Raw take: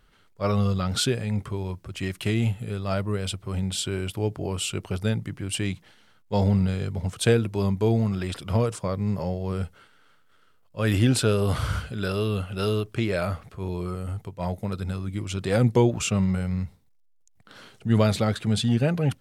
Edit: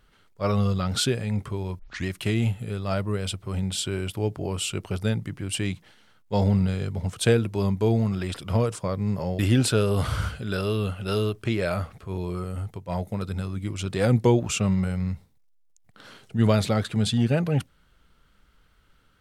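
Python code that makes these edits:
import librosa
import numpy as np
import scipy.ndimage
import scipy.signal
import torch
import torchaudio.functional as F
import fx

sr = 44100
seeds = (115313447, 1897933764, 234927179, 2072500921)

y = fx.edit(x, sr, fx.tape_start(start_s=1.79, length_s=0.26),
    fx.cut(start_s=9.39, length_s=1.51), tone=tone)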